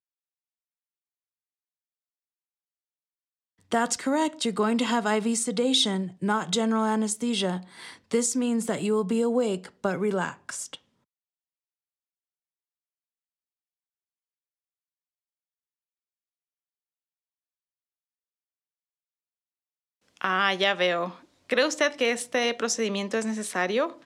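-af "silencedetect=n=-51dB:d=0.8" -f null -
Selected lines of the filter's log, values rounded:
silence_start: 0.00
silence_end: 3.61 | silence_duration: 3.61
silence_start: 10.78
silence_end: 20.08 | silence_duration: 9.30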